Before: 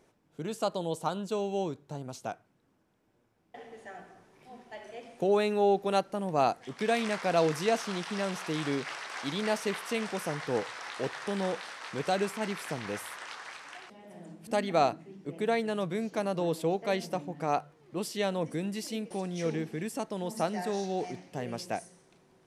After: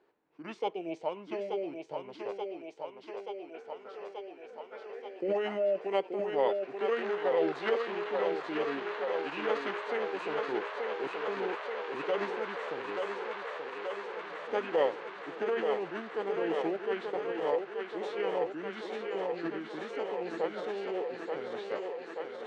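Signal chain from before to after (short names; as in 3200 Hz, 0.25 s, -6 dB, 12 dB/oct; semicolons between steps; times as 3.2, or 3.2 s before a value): three-band isolator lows -20 dB, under 380 Hz, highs -23 dB, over 4500 Hz; thinning echo 0.881 s, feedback 82%, high-pass 280 Hz, level -4 dB; formant shift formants -5 st; gain -1 dB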